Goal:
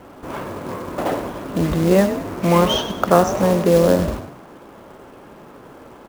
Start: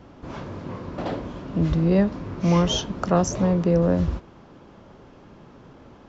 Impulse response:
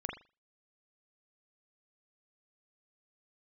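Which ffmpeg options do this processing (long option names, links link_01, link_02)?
-filter_complex "[0:a]bass=frequency=250:gain=-10,treble=frequency=4000:gain=-14,acrusher=bits=4:mode=log:mix=0:aa=0.000001,asplit=5[link_01][link_02][link_03][link_04][link_05];[link_02]adelay=97,afreqshift=37,volume=-11dB[link_06];[link_03]adelay=194,afreqshift=74,volume=-18.5dB[link_07];[link_04]adelay=291,afreqshift=111,volume=-26.1dB[link_08];[link_05]adelay=388,afreqshift=148,volume=-33.6dB[link_09];[link_01][link_06][link_07][link_08][link_09]amix=inputs=5:normalize=0,volume=8.5dB"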